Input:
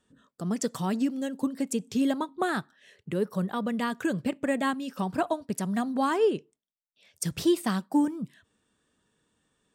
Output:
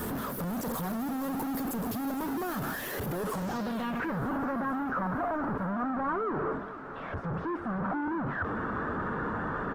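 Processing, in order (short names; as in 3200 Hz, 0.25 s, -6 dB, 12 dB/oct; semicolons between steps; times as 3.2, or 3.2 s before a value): infinite clipping; band shelf 4600 Hz -11.5 dB 2.7 oct; low-pass sweep 13000 Hz -> 1400 Hz, 3.17–4.25; on a send: feedback echo 0.461 s, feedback 60%, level -15 dB; on the sum: gain -2.5 dB; Opus 20 kbps 48000 Hz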